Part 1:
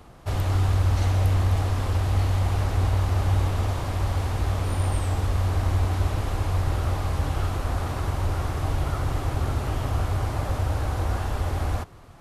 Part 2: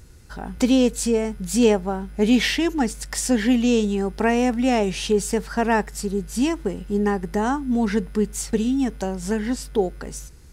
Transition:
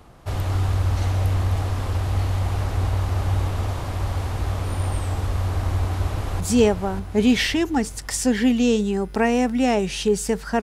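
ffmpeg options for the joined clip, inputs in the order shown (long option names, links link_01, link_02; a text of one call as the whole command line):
ffmpeg -i cue0.wav -i cue1.wav -filter_complex "[0:a]apad=whole_dur=10.62,atrim=end=10.62,atrim=end=6.402[link_01];[1:a]atrim=start=1.438:end=5.66[link_02];[link_01][link_02]acrossfade=duration=0.004:curve1=hsin:curve2=hsin,asplit=2[link_03][link_04];[link_04]afade=type=in:start_time=5.76:duration=0.01,afade=type=out:start_time=6.4:duration=0.01,aecho=0:1:590|1180|1770|2360|2950|3540:0.501187|0.250594|0.125297|0.0626484|0.0313242|0.0156621[link_05];[link_03][link_05]amix=inputs=2:normalize=0" out.wav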